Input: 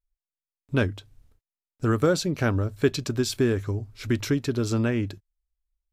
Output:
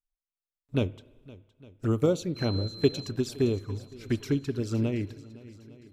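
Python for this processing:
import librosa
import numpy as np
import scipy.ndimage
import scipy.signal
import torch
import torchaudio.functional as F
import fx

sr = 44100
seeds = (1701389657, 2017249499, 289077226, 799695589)

y = fx.env_flanger(x, sr, rest_ms=7.2, full_db=-20.0)
y = fx.dmg_tone(y, sr, hz=4100.0, level_db=-34.0, at=(2.35, 3.09), fade=0.02)
y = fx.echo_swing(y, sr, ms=858, ratio=1.5, feedback_pct=43, wet_db=-16)
y = fx.rev_spring(y, sr, rt60_s=1.3, pass_ms=(36, 57), chirp_ms=75, drr_db=16.0)
y = fx.upward_expand(y, sr, threshold_db=-32.0, expansion=1.5)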